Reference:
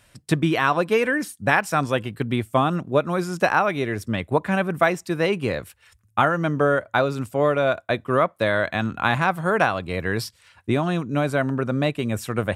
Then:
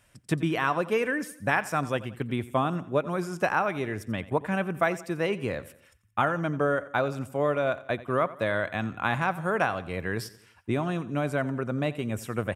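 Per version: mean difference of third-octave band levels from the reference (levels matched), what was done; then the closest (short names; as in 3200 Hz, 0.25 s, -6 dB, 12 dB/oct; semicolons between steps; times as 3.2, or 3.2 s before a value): 2.0 dB: bell 4100 Hz -6.5 dB 0.36 oct; on a send: feedback echo 88 ms, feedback 45%, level -17.5 dB; on the sum: gain -6 dB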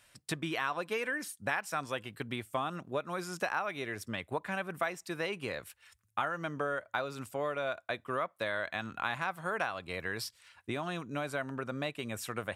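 4.0 dB: low shelf 500 Hz -11 dB; compressor 2:1, threshold -30 dBFS, peak gain reduction 8.5 dB; gain -4.5 dB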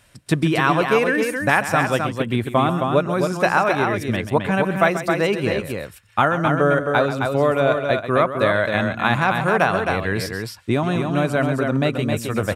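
5.5 dB: reverse; upward compressor, threshold -36 dBFS; reverse; loudspeakers at several distances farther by 46 m -12 dB, 91 m -5 dB; gain +1.5 dB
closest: first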